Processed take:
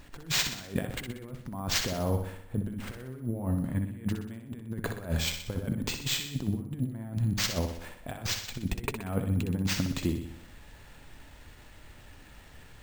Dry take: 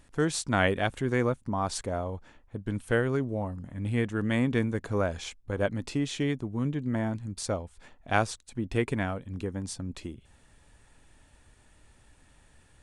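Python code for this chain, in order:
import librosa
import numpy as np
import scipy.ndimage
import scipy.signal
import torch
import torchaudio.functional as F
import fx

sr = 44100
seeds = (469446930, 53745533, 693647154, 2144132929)

p1 = fx.dynamic_eq(x, sr, hz=160.0, q=0.84, threshold_db=-42.0, ratio=4.0, max_db=8)
p2 = fx.over_compress(p1, sr, threshold_db=-32.0, ratio=-0.5)
p3 = p2 + fx.echo_feedback(p2, sr, ms=62, feedback_pct=54, wet_db=-7, dry=0)
y = np.repeat(p3[::4], 4)[:len(p3)]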